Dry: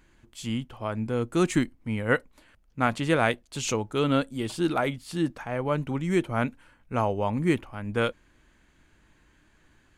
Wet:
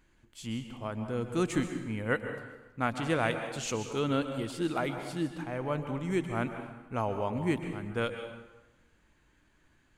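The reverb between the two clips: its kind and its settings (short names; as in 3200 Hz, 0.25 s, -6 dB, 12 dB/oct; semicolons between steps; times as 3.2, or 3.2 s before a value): plate-style reverb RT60 1.1 s, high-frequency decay 0.75×, pre-delay 0.115 s, DRR 7 dB; gain -6 dB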